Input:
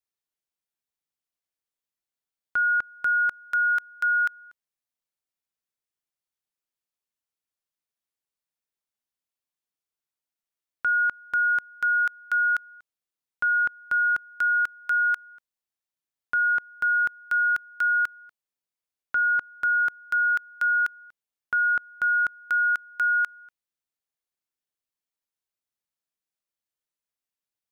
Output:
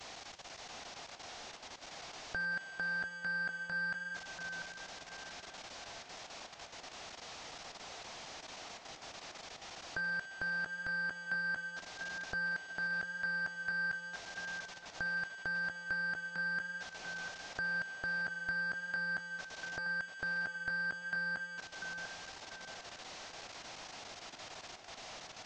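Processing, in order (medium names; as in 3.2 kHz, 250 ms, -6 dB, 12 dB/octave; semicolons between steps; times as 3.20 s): one-bit delta coder 32 kbps, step -45.5 dBFS; peaking EQ 660 Hz +9 dB 0.68 oct; level held to a coarse grid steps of 13 dB; on a send: tape echo 754 ms, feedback 41%, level -5 dB, low-pass 2 kHz; on the sum: speed mistake 44.1 kHz file played as 48 kHz; trim +3 dB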